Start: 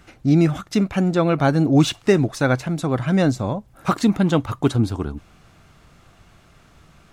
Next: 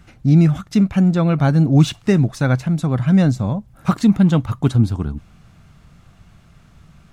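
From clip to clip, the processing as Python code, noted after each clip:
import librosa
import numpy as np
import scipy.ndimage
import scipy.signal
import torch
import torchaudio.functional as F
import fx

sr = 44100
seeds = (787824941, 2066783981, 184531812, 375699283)

y = fx.low_shelf_res(x, sr, hz=250.0, db=6.5, q=1.5)
y = F.gain(torch.from_numpy(y), -2.0).numpy()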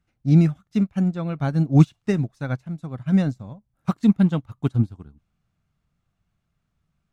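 y = fx.upward_expand(x, sr, threshold_db=-25.0, expansion=2.5)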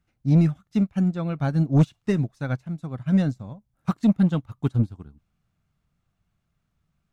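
y = 10.0 ** (-10.5 / 20.0) * np.tanh(x / 10.0 ** (-10.5 / 20.0))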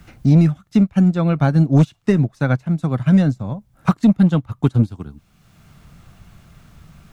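y = fx.band_squash(x, sr, depth_pct=70)
y = F.gain(torch.from_numpy(y), 7.0).numpy()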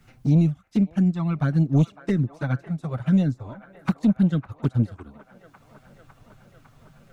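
y = fx.env_flanger(x, sr, rest_ms=8.5, full_db=-9.0)
y = fx.echo_wet_bandpass(y, sr, ms=554, feedback_pct=76, hz=1100.0, wet_db=-14.0)
y = F.gain(torch.from_numpy(y), -5.5).numpy()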